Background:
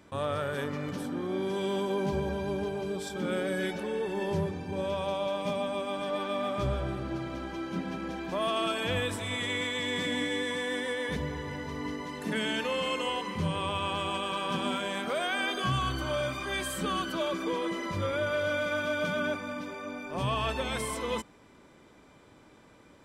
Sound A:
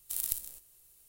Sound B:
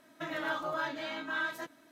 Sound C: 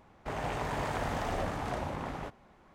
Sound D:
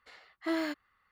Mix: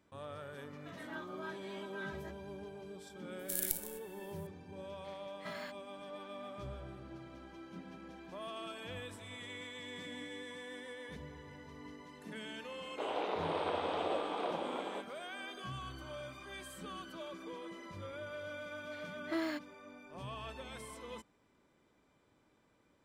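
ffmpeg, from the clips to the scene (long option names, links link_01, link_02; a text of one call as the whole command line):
ffmpeg -i bed.wav -i cue0.wav -i cue1.wav -i cue2.wav -i cue3.wav -filter_complex "[4:a]asplit=2[link_01][link_02];[0:a]volume=-15dB[link_03];[2:a]asplit=2[link_04][link_05];[link_05]adelay=8.8,afreqshift=-2.6[link_06];[link_04][link_06]amix=inputs=2:normalize=1[link_07];[link_01]highpass=frequency=800:width=0.5412,highpass=frequency=800:width=1.3066[link_08];[3:a]highpass=frequency=310:width=0.5412,highpass=frequency=310:width=1.3066,equalizer=frequency=320:width_type=q:width=4:gain=6,equalizer=frequency=480:width_type=q:width=4:gain=7,equalizer=frequency=1800:width_type=q:width=4:gain=-9,equalizer=frequency=3700:width_type=q:width=4:gain=7,lowpass=frequency=4000:width=0.5412,lowpass=frequency=4000:width=1.3066[link_09];[link_07]atrim=end=1.91,asetpts=PTS-STARTPTS,volume=-10dB,afade=type=in:duration=0.004:curve=hsin,afade=type=out:start_time=1.906:duration=0.004:curve=hsin,adelay=650[link_10];[1:a]atrim=end=1.08,asetpts=PTS-STARTPTS,volume=-2.5dB,afade=type=in:duration=0.004:curve=hsin,afade=type=out:start_time=1.076:duration=0.004:curve=hsin,adelay=3390[link_11];[link_08]atrim=end=1.11,asetpts=PTS-STARTPTS,volume=-8.5dB,afade=type=in:duration=0.004:curve=hsin,afade=type=out:start_time=1.106:duration=0.004:curve=hsin,adelay=4980[link_12];[link_09]atrim=end=2.74,asetpts=PTS-STARTPTS,volume=-2.5dB,afade=type=in:duration=0.004:curve=hsin,afade=type=out:start_time=2.736:duration=0.004:curve=hsin,adelay=12720[link_13];[link_02]atrim=end=1.11,asetpts=PTS-STARTPTS,volume=-4.5dB,afade=type=in:duration=0.004:curve=hsin,afade=type=out:start_time=1.106:duration=0.004:curve=hsin,adelay=18850[link_14];[link_03][link_10][link_11][link_12][link_13][link_14]amix=inputs=6:normalize=0" out.wav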